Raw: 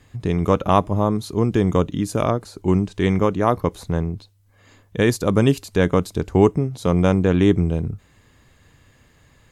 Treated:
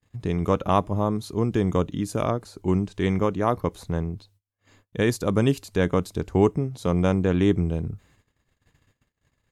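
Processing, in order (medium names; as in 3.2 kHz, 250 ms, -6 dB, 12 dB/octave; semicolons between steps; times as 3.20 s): gate -51 dBFS, range -30 dB; trim -4.5 dB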